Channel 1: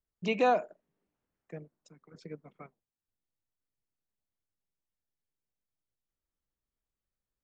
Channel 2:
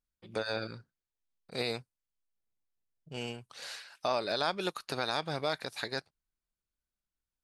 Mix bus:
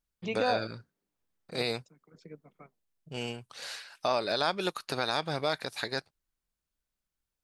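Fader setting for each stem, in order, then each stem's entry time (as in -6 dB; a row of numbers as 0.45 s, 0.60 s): -4.0 dB, +2.5 dB; 0.00 s, 0.00 s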